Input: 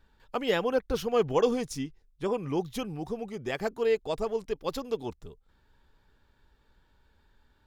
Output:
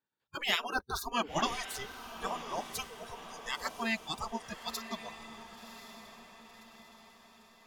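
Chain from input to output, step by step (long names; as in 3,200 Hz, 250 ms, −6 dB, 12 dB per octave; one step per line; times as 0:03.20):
gate on every frequency bin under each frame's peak −15 dB weak
noise reduction from a noise print of the clip's start 27 dB
feedback delay with all-pass diffusion 1,075 ms, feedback 50%, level −11 dB
level +6 dB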